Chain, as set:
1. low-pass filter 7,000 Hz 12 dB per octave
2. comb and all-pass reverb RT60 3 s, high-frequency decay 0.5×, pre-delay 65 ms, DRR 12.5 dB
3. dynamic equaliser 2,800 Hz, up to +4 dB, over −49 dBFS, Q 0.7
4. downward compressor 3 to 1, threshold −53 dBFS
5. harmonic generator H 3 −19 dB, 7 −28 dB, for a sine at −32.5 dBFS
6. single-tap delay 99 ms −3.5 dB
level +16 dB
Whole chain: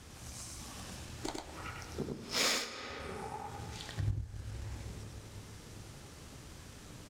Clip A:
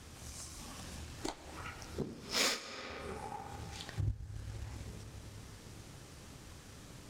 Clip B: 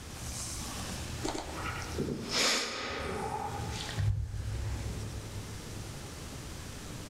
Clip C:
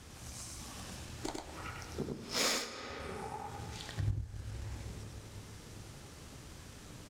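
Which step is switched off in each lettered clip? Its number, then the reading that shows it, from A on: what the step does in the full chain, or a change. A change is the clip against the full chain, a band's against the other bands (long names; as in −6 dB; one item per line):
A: 6, change in integrated loudness −1.5 LU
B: 5, change in crest factor −5.5 dB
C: 3, 2 kHz band −1.5 dB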